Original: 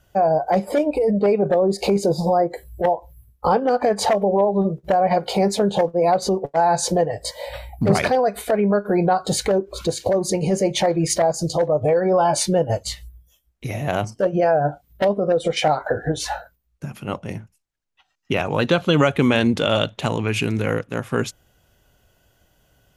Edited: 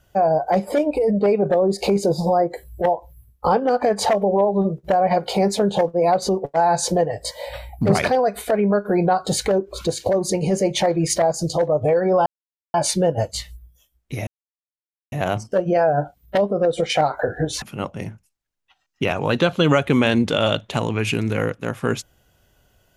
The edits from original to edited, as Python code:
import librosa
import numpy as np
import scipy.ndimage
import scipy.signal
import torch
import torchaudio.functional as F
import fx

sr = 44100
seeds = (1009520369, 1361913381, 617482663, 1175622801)

y = fx.edit(x, sr, fx.insert_silence(at_s=12.26, length_s=0.48),
    fx.insert_silence(at_s=13.79, length_s=0.85),
    fx.cut(start_s=16.29, length_s=0.62), tone=tone)